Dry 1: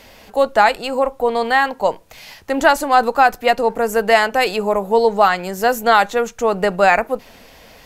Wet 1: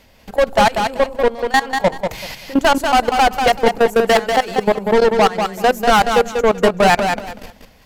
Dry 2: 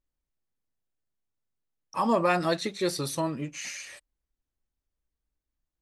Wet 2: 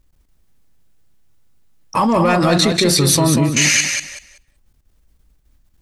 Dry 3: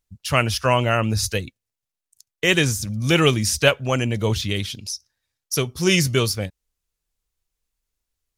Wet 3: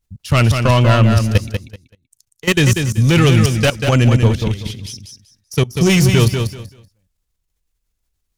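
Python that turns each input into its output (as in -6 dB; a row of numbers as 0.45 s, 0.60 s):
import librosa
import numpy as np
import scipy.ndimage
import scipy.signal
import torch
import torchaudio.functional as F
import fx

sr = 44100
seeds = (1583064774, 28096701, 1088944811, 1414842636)

p1 = 10.0 ** (-17.5 / 20.0) * np.tanh(x / 10.0 ** (-17.5 / 20.0))
p2 = fx.bass_treble(p1, sr, bass_db=7, treble_db=0)
p3 = fx.level_steps(p2, sr, step_db=20)
p4 = p3 + fx.echo_feedback(p3, sr, ms=191, feedback_pct=21, wet_db=-6, dry=0)
y = p4 * 10.0 ** (-2 / 20.0) / np.max(np.abs(p4))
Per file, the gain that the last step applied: +9.5 dB, +25.5 dB, +8.5 dB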